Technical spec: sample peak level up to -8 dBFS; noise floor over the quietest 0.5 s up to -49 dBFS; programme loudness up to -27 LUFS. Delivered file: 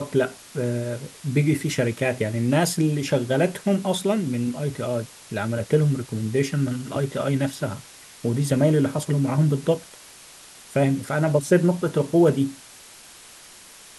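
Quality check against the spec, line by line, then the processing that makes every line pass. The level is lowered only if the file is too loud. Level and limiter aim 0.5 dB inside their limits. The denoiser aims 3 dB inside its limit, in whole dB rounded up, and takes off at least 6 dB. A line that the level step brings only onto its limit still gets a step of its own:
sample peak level -6.0 dBFS: fail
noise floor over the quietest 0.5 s -46 dBFS: fail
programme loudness -23.5 LUFS: fail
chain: trim -4 dB

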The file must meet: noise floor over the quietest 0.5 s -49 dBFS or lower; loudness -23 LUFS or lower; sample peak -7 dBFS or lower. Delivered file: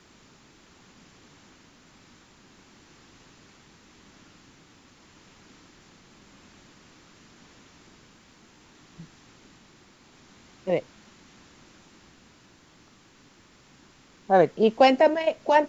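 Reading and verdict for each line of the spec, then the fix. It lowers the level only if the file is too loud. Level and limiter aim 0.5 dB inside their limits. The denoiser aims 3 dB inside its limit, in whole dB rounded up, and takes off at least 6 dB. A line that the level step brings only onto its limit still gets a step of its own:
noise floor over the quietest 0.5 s -56 dBFS: pass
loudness -22.0 LUFS: fail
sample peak -6.0 dBFS: fail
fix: trim -1.5 dB

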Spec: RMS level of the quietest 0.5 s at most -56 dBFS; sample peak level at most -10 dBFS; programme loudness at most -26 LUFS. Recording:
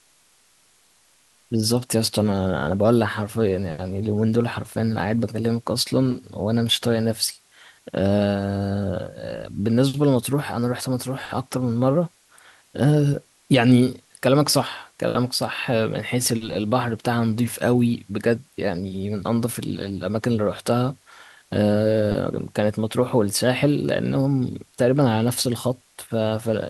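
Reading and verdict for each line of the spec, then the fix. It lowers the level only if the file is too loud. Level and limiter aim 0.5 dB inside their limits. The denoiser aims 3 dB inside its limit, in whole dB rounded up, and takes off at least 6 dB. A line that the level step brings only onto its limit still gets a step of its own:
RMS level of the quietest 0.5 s -59 dBFS: pass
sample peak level -4.5 dBFS: fail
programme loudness -22.5 LUFS: fail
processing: trim -4 dB; peak limiter -10.5 dBFS

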